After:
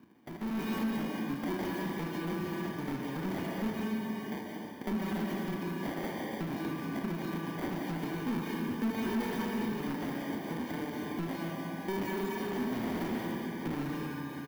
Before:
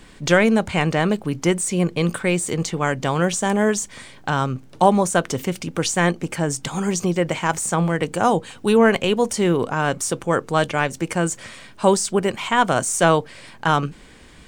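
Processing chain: random spectral dropouts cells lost 59%; band shelf 890 Hz -12 dB; notches 50/100/150/200/250/300/350/400/450 Hz; doubler 36 ms -6 dB; sample-and-hold 33×; HPF 95 Hz 24 dB/oct; digital reverb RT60 2 s, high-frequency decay 1×, pre-delay 95 ms, DRR 1.5 dB; overloaded stage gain 23 dB; compressor 5:1, threshold -35 dBFS, peak gain reduction 9.5 dB; graphic EQ 125/250/500/4000/8000 Hz -9/+8/-7/-4/-11 dB; speakerphone echo 80 ms, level -6 dB; AGC gain up to 9.5 dB; gain -8 dB

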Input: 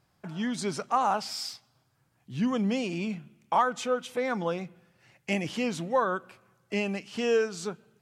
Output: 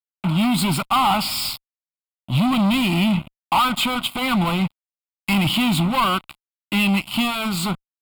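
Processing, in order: HPF 47 Hz 12 dB/oct; bell 690 Hz -6 dB 1.2 oct; fuzz box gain 38 dB, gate -47 dBFS; fixed phaser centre 1700 Hz, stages 6

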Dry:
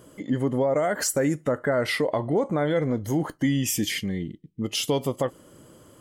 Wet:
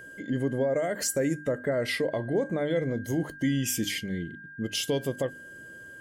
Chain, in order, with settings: whine 1600 Hz -34 dBFS; band shelf 1100 Hz -8 dB 1.3 oct; notches 50/100/150/200/250/300 Hz; gain -3 dB

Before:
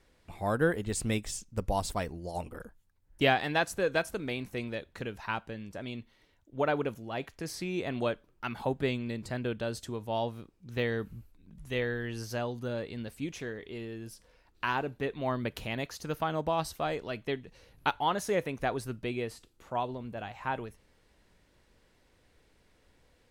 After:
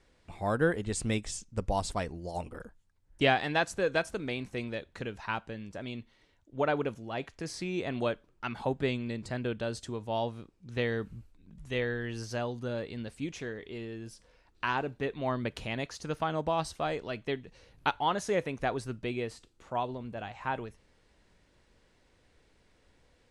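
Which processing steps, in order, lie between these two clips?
LPF 9400 Hz 24 dB/oct

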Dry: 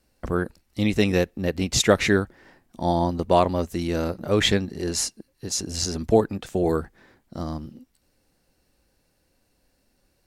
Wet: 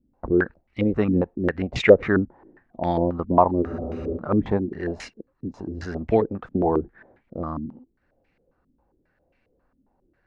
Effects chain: spectral freeze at 3.64, 0.52 s; stepped low-pass 7.4 Hz 260–2300 Hz; gain -2 dB

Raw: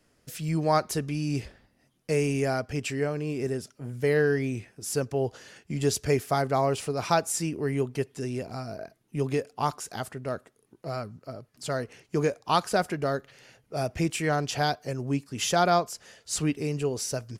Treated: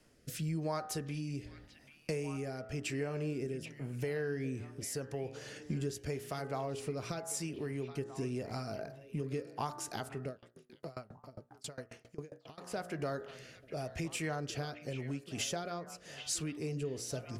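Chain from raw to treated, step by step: de-hum 59.28 Hz, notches 33; compressor 6:1, threshold -38 dBFS, peak gain reduction 18.5 dB; rotary speaker horn 0.9 Hz; delay with a stepping band-pass 0.784 s, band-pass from 2700 Hz, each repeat -1.4 oct, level -8 dB; 10.29–12.58 dB-ramp tremolo decaying 7.4 Hz, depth 26 dB; gain +4 dB

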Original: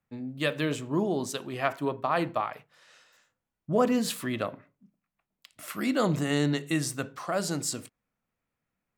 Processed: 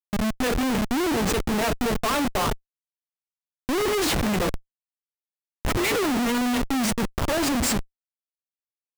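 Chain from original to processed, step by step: formant-preserving pitch shift +9 st; Schmitt trigger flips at -35 dBFS; gain +8.5 dB

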